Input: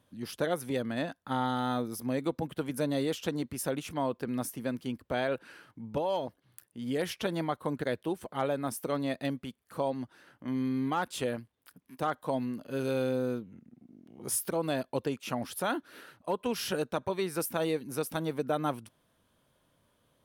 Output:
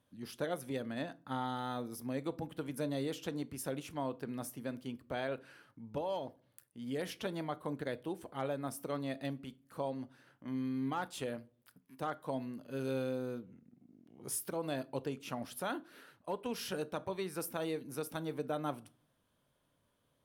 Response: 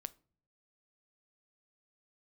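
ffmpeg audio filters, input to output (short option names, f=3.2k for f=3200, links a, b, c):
-filter_complex "[1:a]atrim=start_sample=2205[a];[0:a][a]afir=irnorm=-1:irlink=0,volume=-3dB"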